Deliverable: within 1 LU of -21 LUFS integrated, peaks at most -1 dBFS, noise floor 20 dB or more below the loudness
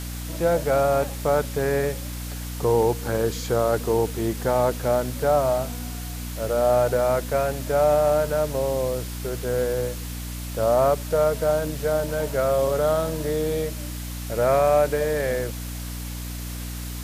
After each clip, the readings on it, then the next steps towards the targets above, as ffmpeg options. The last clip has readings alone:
hum 60 Hz; harmonics up to 300 Hz; hum level -30 dBFS; noise floor -32 dBFS; noise floor target -44 dBFS; loudness -24.0 LUFS; peak -8.5 dBFS; loudness target -21.0 LUFS
-> -af "bandreject=f=60:t=h:w=6,bandreject=f=120:t=h:w=6,bandreject=f=180:t=h:w=6,bandreject=f=240:t=h:w=6,bandreject=f=300:t=h:w=6"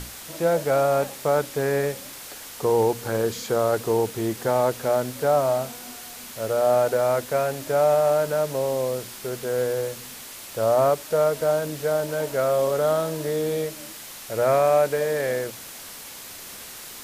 hum none; noise floor -40 dBFS; noise floor target -44 dBFS
-> -af "afftdn=nr=6:nf=-40"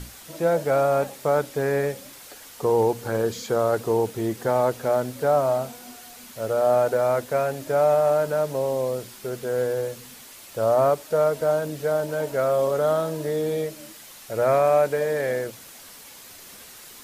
noise floor -45 dBFS; loudness -23.5 LUFS; peak -10.0 dBFS; loudness target -21.0 LUFS
-> -af "volume=2.5dB"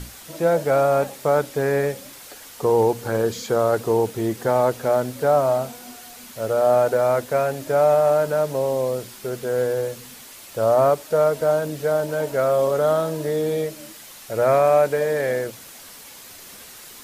loudness -21.0 LUFS; peak -7.5 dBFS; noise floor -42 dBFS

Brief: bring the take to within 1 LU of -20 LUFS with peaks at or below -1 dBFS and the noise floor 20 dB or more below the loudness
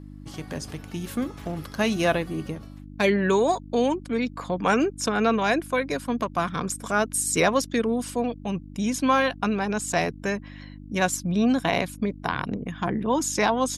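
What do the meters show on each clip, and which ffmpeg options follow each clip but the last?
hum 50 Hz; harmonics up to 300 Hz; hum level -40 dBFS; loudness -25.5 LUFS; peak -8.0 dBFS; loudness target -20.0 LUFS
-> -af "bandreject=f=50:t=h:w=4,bandreject=f=100:t=h:w=4,bandreject=f=150:t=h:w=4,bandreject=f=200:t=h:w=4,bandreject=f=250:t=h:w=4,bandreject=f=300:t=h:w=4"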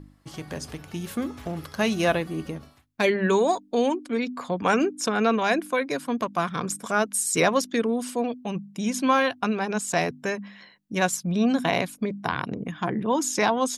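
hum none; loudness -25.5 LUFS; peak -7.5 dBFS; loudness target -20.0 LUFS
-> -af "volume=5.5dB"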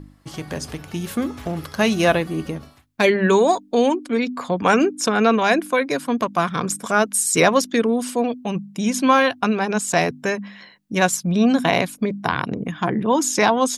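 loudness -20.0 LUFS; peak -2.0 dBFS; noise floor -50 dBFS

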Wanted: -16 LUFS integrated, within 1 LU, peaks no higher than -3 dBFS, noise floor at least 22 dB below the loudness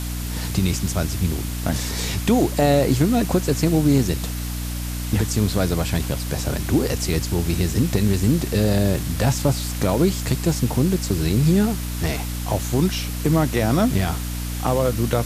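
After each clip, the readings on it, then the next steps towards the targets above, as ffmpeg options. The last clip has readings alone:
hum 60 Hz; harmonics up to 300 Hz; hum level -25 dBFS; noise floor -27 dBFS; noise floor target -44 dBFS; loudness -21.5 LUFS; peak -7.0 dBFS; loudness target -16.0 LUFS
-> -af "bandreject=f=60:t=h:w=6,bandreject=f=120:t=h:w=6,bandreject=f=180:t=h:w=6,bandreject=f=240:t=h:w=6,bandreject=f=300:t=h:w=6"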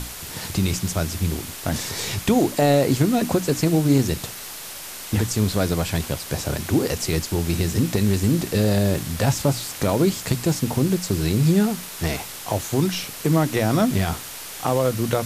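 hum none; noise floor -36 dBFS; noise floor target -44 dBFS
-> -af "afftdn=nr=8:nf=-36"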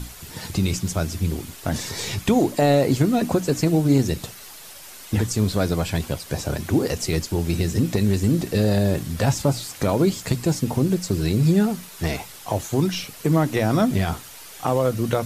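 noise floor -42 dBFS; noise floor target -45 dBFS
-> -af "afftdn=nr=6:nf=-42"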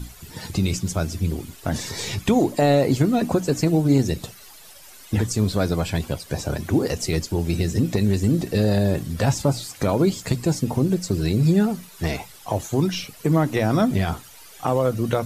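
noise floor -45 dBFS; loudness -22.5 LUFS; peak -8.0 dBFS; loudness target -16.0 LUFS
-> -af "volume=6.5dB,alimiter=limit=-3dB:level=0:latency=1"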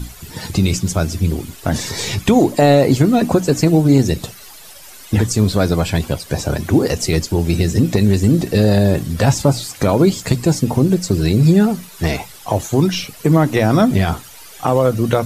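loudness -16.0 LUFS; peak -3.0 dBFS; noise floor -39 dBFS

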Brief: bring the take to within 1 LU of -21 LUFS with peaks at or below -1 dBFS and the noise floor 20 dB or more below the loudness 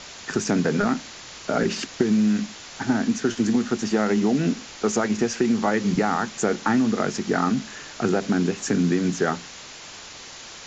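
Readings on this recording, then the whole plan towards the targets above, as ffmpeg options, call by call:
noise floor -41 dBFS; noise floor target -44 dBFS; loudness -23.5 LUFS; peak -6.0 dBFS; loudness target -21.0 LUFS
-> -af "afftdn=nr=6:nf=-41"
-af "volume=2.5dB"

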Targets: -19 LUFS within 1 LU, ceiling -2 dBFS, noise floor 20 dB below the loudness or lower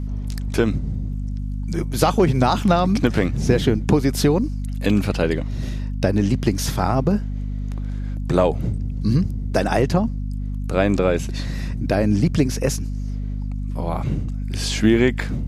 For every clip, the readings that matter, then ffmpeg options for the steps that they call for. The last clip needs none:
hum 50 Hz; harmonics up to 250 Hz; hum level -23 dBFS; loudness -21.5 LUFS; peak -1.5 dBFS; loudness target -19.0 LUFS
-> -af "bandreject=f=50:t=h:w=4,bandreject=f=100:t=h:w=4,bandreject=f=150:t=h:w=4,bandreject=f=200:t=h:w=4,bandreject=f=250:t=h:w=4"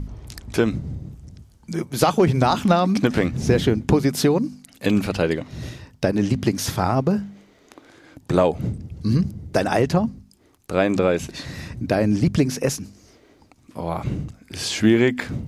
hum none; loudness -21.5 LUFS; peak -1.5 dBFS; loudness target -19.0 LUFS
-> -af "volume=2.5dB,alimiter=limit=-2dB:level=0:latency=1"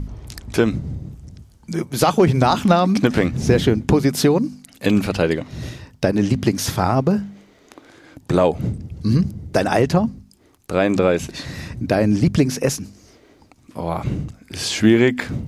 loudness -19.0 LUFS; peak -2.0 dBFS; noise floor -53 dBFS

